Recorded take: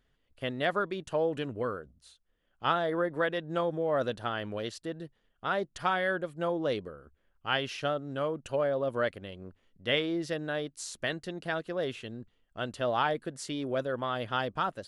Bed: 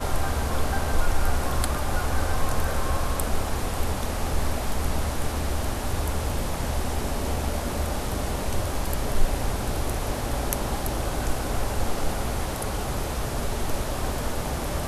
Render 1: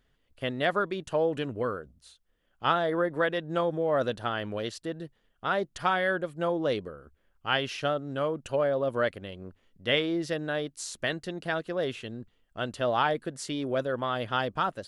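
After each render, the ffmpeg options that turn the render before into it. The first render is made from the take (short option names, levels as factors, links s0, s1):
-af "volume=1.33"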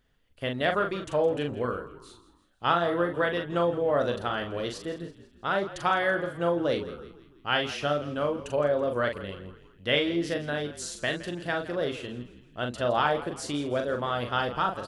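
-filter_complex "[0:a]asplit=2[s0][s1];[s1]adelay=41,volume=0.531[s2];[s0][s2]amix=inputs=2:normalize=0,asplit=5[s3][s4][s5][s6][s7];[s4]adelay=165,afreqshift=-46,volume=0.168[s8];[s5]adelay=330,afreqshift=-92,volume=0.0822[s9];[s6]adelay=495,afreqshift=-138,volume=0.0403[s10];[s7]adelay=660,afreqshift=-184,volume=0.0197[s11];[s3][s8][s9][s10][s11]amix=inputs=5:normalize=0"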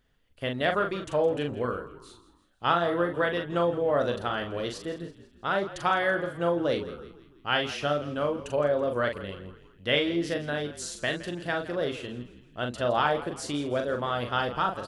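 -af anull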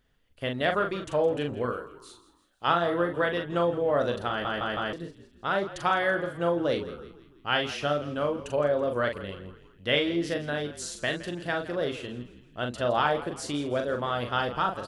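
-filter_complex "[0:a]asettb=1/sr,asplit=3[s0][s1][s2];[s0]atrim=end=1.724[s3];[s1]atrim=start=1.72:end=2.68,asetpts=PTS-STARTPTS,afade=t=in:d=0.004:c=qsin,afade=t=out:st=0.956:d=0.004:c=qsin,bass=f=250:g=-7,treble=f=4000:g=4[s4];[s2]atrim=start=2.676[s5];[s3][s4]acrossfade=d=0.004:c1=hsin:c2=qsin[s6];[s6][s5]acrossfade=d=0.004:c1=qsin:c2=hsin,asplit=5[s7][s8][s9][s10][s11];[s7]atrim=end=4.452[s12];[s8]atrim=start=4.288:end=4.452[s13];[s9]atrim=start=4.288:end=4.452[s14];[s10]atrim=start=4.288:end=4.452[s15];[s11]atrim=start=4.928[s16];[s12][s13]acrossfade=d=0.004:c1=hsin:c2=hsin[s17];[s17][s14]acrossfade=d=0.004:c1=hsin:c2=hsin[s18];[s18][s15]acrossfade=d=0.004:c1=hsin:c2=hsin[s19];[s19][s16]acrossfade=d=0.004:c1=hsin:c2=hsin"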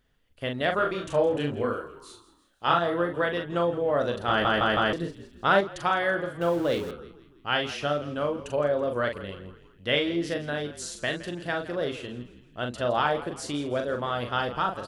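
-filter_complex "[0:a]asettb=1/sr,asplit=3[s0][s1][s2];[s0]atrim=end=0.764[s3];[s1]atrim=start=0.76:end=2.79,asetpts=PTS-STARTPTS,afade=t=in:d=0.004:c=qsin,afade=t=out:st=2.026:d=0.004:c=qsin,asplit=2[s4][s5];[s5]adelay=28,volume=0.708[s6];[s4][s6]amix=inputs=2:normalize=0,atrim=end_sample=89523[s7];[s2]atrim=start=2.786[s8];[s3][s7]acrossfade=d=0.004:c1=hsin:c2=qsin[s9];[s9][s8]acrossfade=d=0.004:c1=qsin:c2=hsin,asettb=1/sr,asplit=3[s10][s11][s12];[s10]atrim=end=4.284[s13];[s11]atrim=start=4.28:end=5.61,asetpts=PTS-STARTPTS,afade=t=in:d=0.004:c=qsin,afade=t=out:st=1.326:d=0.004:c=qsin,acontrast=72[s14];[s12]atrim=start=5.606[s15];[s13][s14]acrossfade=d=0.004:c1=hsin:c2=qsin[s16];[s16][s15]acrossfade=d=0.004:c1=qsin:c2=hsin,asettb=1/sr,asplit=3[s17][s18][s19];[s17]atrim=end=6.414[s20];[s18]atrim=start=6.41:end=6.91,asetpts=PTS-STARTPTS,afade=t=in:d=0.004:c=qsin,afade=t=out:st=0.496:d=0.004:c=qsin,aeval=exprs='val(0)+0.5*0.0141*sgn(val(0))':c=same[s21];[s19]atrim=start=6.906[s22];[s20][s21]acrossfade=d=0.004:c1=hsin:c2=qsin[s23];[s23][s22]acrossfade=d=0.004:c1=qsin:c2=hsin"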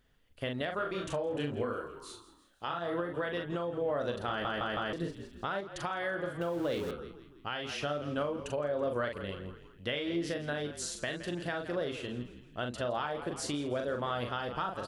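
-af "acompressor=threshold=0.0501:ratio=10,alimiter=limit=0.0668:level=0:latency=1:release=455"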